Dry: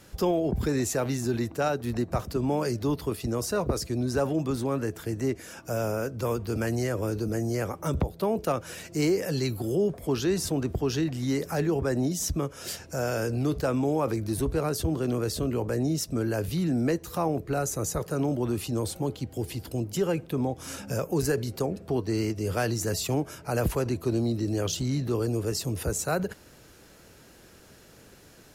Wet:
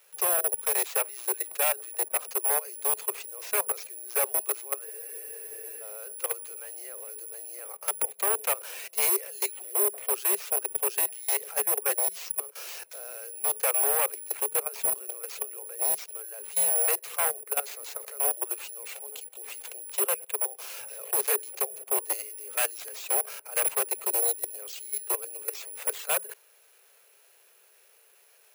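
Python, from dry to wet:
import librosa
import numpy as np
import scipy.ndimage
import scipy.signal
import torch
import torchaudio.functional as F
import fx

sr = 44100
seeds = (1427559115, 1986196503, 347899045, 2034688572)

y = (np.kron(x[::4], np.eye(4)[0]) * 4)[:len(x)]
y = fx.peak_eq(y, sr, hz=1100.0, db=2.5, octaves=1.9)
y = fx.level_steps(y, sr, step_db=20)
y = 10.0 ** (-12.5 / 20.0) * (np.abs((y / 10.0 ** (-12.5 / 20.0) + 3.0) % 4.0 - 2.0) - 1.0)
y = scipy.signal.sosfilt(scipy.signal.butter(16, 390.0, 'highpass', fs=sr, output='sos'), y)
y = fx.peak_eq(y, sr, hz=2500.0, db=8.0, octaves=0.52)
y = fx.spec_freeze(y, sr, seeds[0], at_s=4.88, hold_s=0.94)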